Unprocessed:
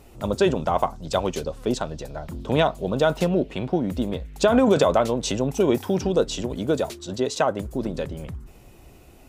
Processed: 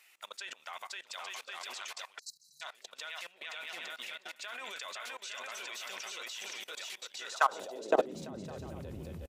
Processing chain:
on a send: bouncing-ball delay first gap 520 ms, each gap 0.65×, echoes 5
on the sum: time-frequency box erased 0:02.19–0:02.62, 210–3,900 Hz
high-pass filter sweep 2,000 Hz → 78 Hz, 0:07.18–0:08.68
output level in coarse steps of 20 dB
level −3 dB

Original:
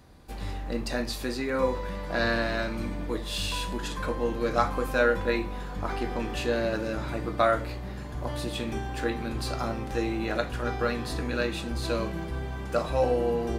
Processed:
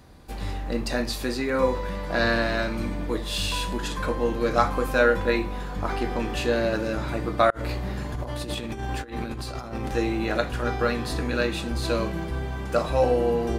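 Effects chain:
0:07.50–0:09.89: compressor whose output falls as the input rises −34 dBFS, ratio −0.5
level +3.5 dB

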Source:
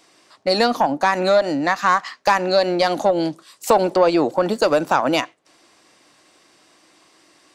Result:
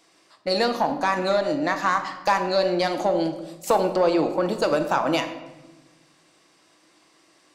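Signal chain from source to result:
rectangular room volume 610 cubic metres, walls mixed, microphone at 0.7 metres
level −5.5 dB

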